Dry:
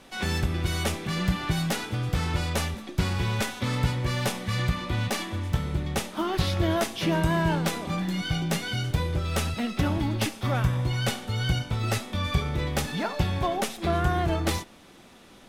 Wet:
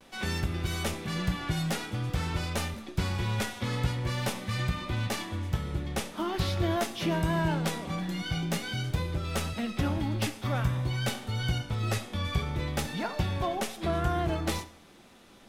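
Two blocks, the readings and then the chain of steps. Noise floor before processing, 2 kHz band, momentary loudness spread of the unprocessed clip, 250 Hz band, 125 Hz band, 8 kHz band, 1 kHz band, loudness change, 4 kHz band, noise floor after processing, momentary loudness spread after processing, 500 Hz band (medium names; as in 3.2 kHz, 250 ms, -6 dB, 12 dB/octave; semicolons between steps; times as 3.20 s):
-51 dBFS, -4.0 dB, 4 LU, -3.5 dB, -3.5 dB, -4.0 dB, -4.0 dB, -3.5 dB, -4.0 dB, -54 dBFS, 4 LU, -3.5 dB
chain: vibrato 0.48 Hz 34 cents; plate-style reverb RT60 0.65 s, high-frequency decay 0.85×, DRR 12.5 dB; trim -4 dB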